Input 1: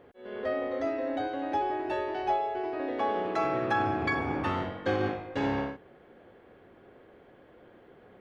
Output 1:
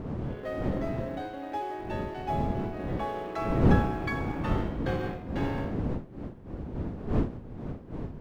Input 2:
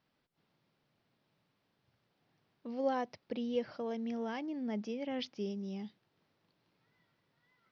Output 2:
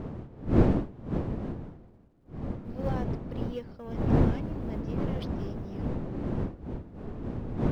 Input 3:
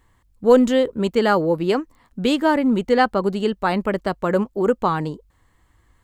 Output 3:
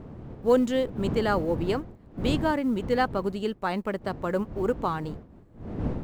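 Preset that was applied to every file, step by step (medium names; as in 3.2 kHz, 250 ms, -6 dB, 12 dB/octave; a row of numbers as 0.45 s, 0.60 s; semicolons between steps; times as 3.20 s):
companding laws mixed up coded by A; wind noise 250 Hz -28 dBFS; peak normalisation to -9 dBFS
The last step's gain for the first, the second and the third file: -3.5 dB, -2.0 dB, -7.5 dB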